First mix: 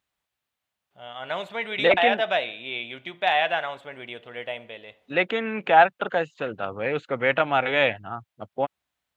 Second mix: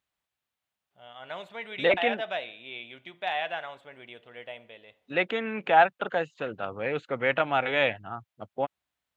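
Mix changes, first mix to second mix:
first voice −8.5 dB
second voice −3.5 dB

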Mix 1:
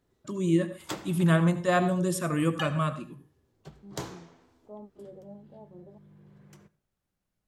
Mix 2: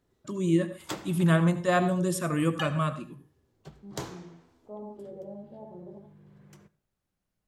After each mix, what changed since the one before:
second voice: send on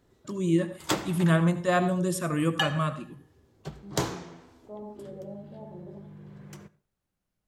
background +8.5 dB

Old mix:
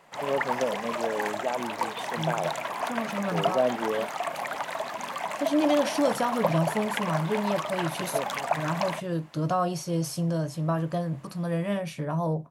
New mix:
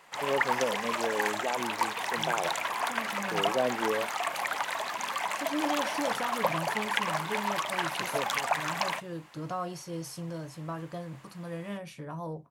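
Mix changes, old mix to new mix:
second voice −7.0 dB
background: add tilt shelving filter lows −4 dB, about 740 Hz
master: add thirty-one-band graphic EQ 160 Hz −5 dB, 250 Hz −3 dB, 630 Hz −6 dB

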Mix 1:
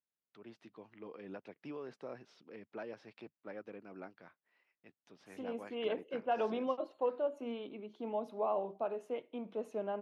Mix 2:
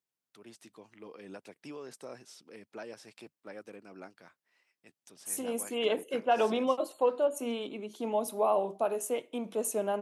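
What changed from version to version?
second voice +6.0 dB
master: remove high-frequency loss of the air 280 metres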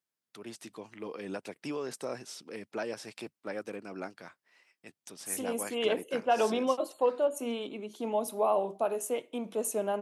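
first voice +8.0 dB

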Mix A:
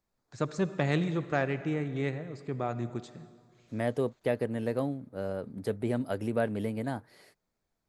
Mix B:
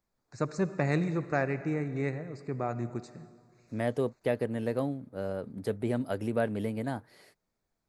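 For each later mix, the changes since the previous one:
first voice: add Butterworth band-reject 3,200 Hz, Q 2.2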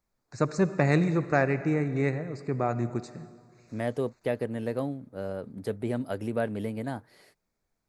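first voice +5.0 dB

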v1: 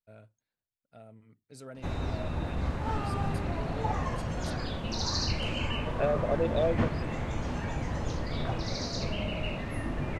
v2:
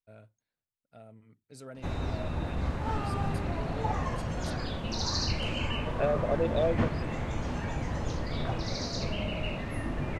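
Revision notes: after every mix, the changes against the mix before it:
nothing changed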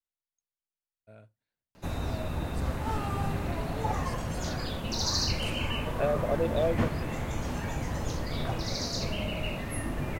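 first voice: entry +1.00 s
background: remove high-frequency loss of the air 80 metres

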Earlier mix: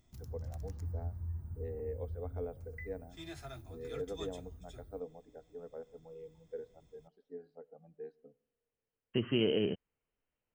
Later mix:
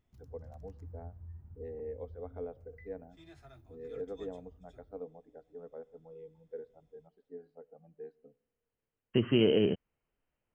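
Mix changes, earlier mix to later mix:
second voice +5.0 dB
background −8.0 dB
master: add high-shelf EQ 4,500 Hz −10.5 dB

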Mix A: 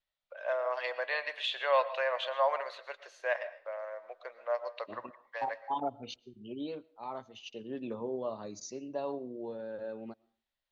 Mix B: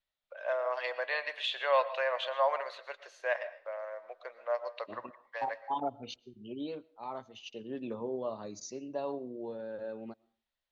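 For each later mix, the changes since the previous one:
nothing changed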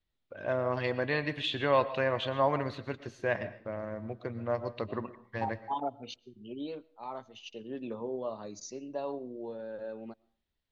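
first voice: remove elliptic high-pass filter 550 Hz, stop band 80 dB

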